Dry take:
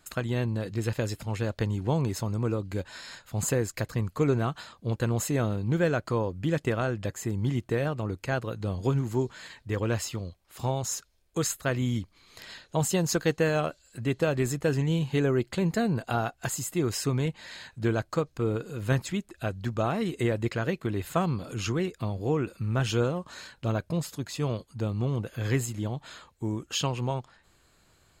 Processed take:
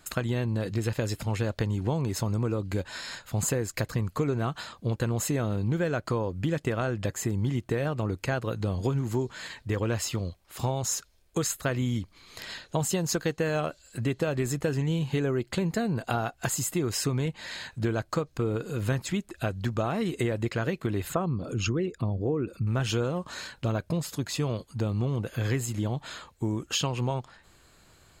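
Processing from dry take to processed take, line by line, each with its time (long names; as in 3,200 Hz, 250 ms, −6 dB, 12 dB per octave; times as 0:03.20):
0:21.08–0:22.67: spectral envelope exaggerated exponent 1.5
whole clip: downward compressor 4 to 1, threshold −30 dBFS; level +5 dB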